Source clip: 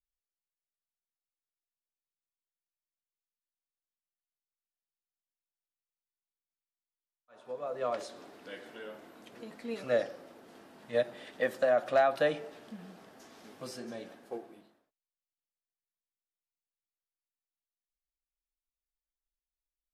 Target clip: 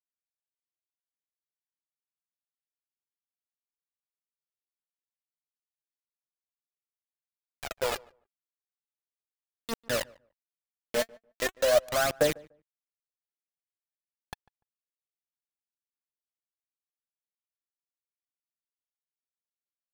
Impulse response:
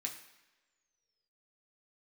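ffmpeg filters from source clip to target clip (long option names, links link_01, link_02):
-filter_complex "[0:a]acrusher=bits=4:mix=0:aa=0.000001,aphaser=in_gain=1:out_gain=1:delay=4.7:decay=0.61:speed=0.41:type=triangular,asplit=2[link_01][link_02];[link_02]adelay=147,lowpass=frequency=1300:poles=1,volume=-23.5dB,asplit=2[link_03][link_04];[link_04]adelay=147,lowpass=frequency=1300:poles=1,volume=0.18[link_05];[link_03][link_05]amix=inputs=2:normalize=0[link_06];[link_01][link_06]amix=inputs=2:normalize=0"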